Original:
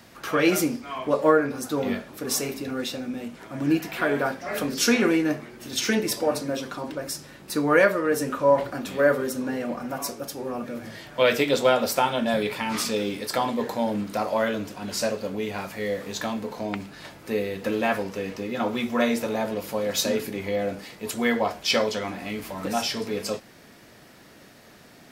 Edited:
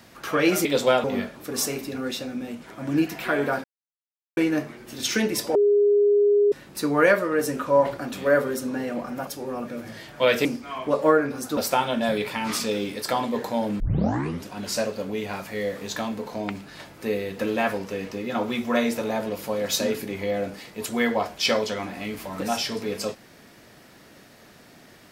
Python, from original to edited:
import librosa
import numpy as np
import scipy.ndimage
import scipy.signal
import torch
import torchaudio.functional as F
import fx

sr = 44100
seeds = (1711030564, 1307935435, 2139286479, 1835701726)

y = fx.edit(x, sr, fx.swap(start_s=0.65, length_s=1.12, other_s=11.43, other_length_s=0.39),
    fx.silence(start_s=4.37, length_s=0.73),
    fx.bleep(start_s=6.28, length_s=0.97, hz=410.0, db=-15.0),
    fx.cut(start_s=10.0, length_s=0.25),
    fx.tape_start(start_s=14.05, length_s=0.67), tone=tone)